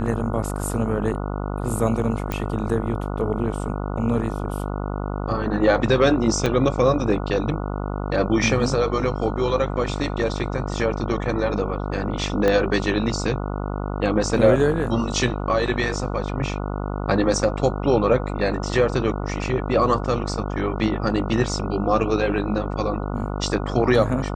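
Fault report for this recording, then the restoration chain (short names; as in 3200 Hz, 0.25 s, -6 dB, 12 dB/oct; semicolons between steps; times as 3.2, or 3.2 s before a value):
buzz 50 Hz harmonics 29 -27 dBFS
2.32 pop
6.46 gap 4.5 ms
12.48 pop -9 dBFS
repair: de-click; de-hum 50 Hz, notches 29; interpolate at 6.46, 4.5 ms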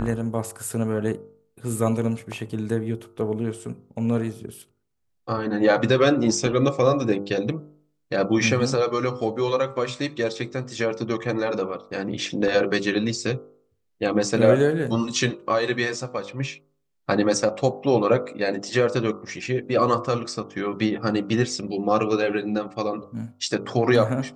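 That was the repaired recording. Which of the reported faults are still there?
12.48 pop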